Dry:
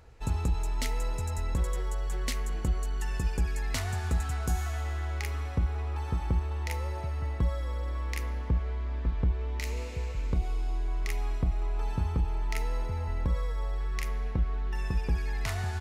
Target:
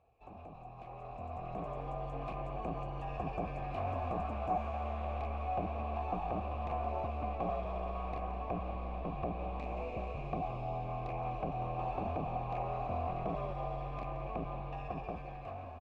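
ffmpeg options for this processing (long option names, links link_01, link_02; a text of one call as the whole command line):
ffmpeg -i in.wav -filter_complex "[0:a]aeval=exprs='0.0316*(abs(mod(val(0)/0.0316+3,4)-2)-1)':channel_layout=same,equalizer=frequency=1400:width=5.1:gain=-12.5,acrossover=split=2200[link_01][link_02];[link_02]acompressor=threshold=-56dB:ratio=6[link_03];[link_01][link_03]amix=inputs=2:normalize=0,asplit=3[link_04][link_05][link_06];[link_04]bandpass=frequency=730:width_type=q:width=8,volume=0dB[link_07];[link_05]bandpass=frequency=1090:width_type=q:width=8,volume=-6dB[link_08];[link_06]bandpass=frequency=2440:width_type=q:width=8,volume=-9dB[link_09];[link_07][link_08][link_09]amix=inputs=3:normalize=0,bass=frequency=250:gain=14,treble=frequency=4000:gain=-6,bandreject=frequency=3100:width=22,asplit=2[link_10][link_11];[link_11]asplit=4[link_12][link_13][link_14][link_15];[link_12]adelay=173,afreqshift=-73,volume=-13dB[link_16];[link_13]adelay=346,afreqshift=-146,volume=-20.1dB[link_17];[link_14]adelay=519,afreqshift=-219,volume=-27.3dB[link_18];[link_15]adelay=692,afreqshift=-292,volume=-34.4dB[link_19];[link_16][link_17][link_18][link_19]amix=inputs=4:normalize=0[link_20];[link_10][link_20]amix=inputs=2:normalize=0,dynaudnorm=framelen=140:gausssize=21:maxgain=14dB" out.wav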